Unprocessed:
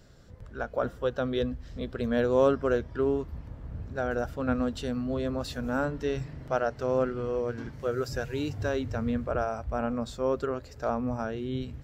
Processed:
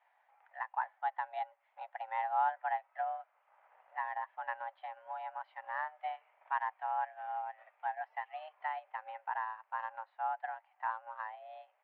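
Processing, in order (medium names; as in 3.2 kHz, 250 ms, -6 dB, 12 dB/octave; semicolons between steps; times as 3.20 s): mistuned SSB +320 Hz 390–2500 Hz; transient shaper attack +4 dB, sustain -7 dB; trim -8.5 dB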